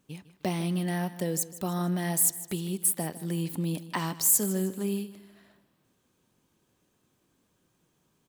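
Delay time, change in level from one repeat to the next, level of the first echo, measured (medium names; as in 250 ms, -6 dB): 154 ms, -7.5 dB, -16.0 dB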